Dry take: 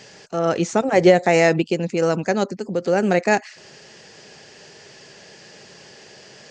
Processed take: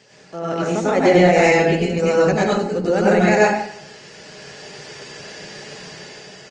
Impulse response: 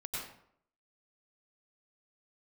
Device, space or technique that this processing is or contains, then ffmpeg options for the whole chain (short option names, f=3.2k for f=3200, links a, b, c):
far-field microphone of a smart speaker: -filter_complex "[0:a]asettb=1/sr,asplit=3[a][b][c];[a]atrim=end=1.554[d];[b]atrim=start=1.55:end=2.01,asetpts=PTS-STARTPTS,afade=t=in:d=0.004:c=qsin,afade=t=out:st=0.456:d=0.004:c=qsin,aecho=1:1:4.4:0.41,atrim=end_sample=20286[e];[c]atrim=start=2.006[f];[d][e]acrossfade=d=0.004:c1=hsin:c2=qsin[g];[g][f]acrossfade=d=0.004:c1=qsin:c2=hsin,aecho=1:1:93|186|279|372:0.0944|0.0472|0.0236|0.0118[h];[1:a]atrim=start_sample=2205[i];[h][i]afir=irnorm=-1:irlink=0,highpass=92,dynaudnorm=f=200:g=9:m=9dB,volume=-1dB" -ar 48000 -c:a libopus -b:a 24k